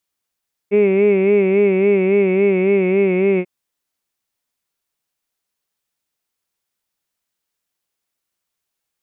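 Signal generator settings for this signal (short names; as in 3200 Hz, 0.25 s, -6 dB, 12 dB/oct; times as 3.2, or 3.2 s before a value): formant vowel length 2.74 s, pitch 200 Hz, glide -1 st, vibrato 3.6 Hz, vibrato depth 0.8 st, F1 420 Hz, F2 2200 Hz, F3 2600 Hz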